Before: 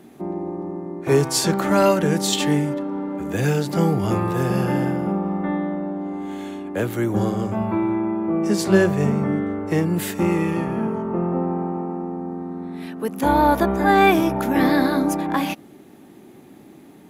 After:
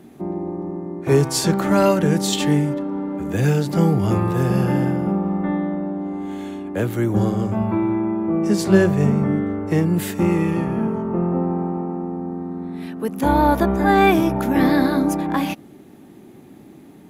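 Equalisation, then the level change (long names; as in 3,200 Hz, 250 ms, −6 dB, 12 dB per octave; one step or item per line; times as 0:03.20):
low-shelf EQ 230 Hz +6.5 dB
−1.0 dB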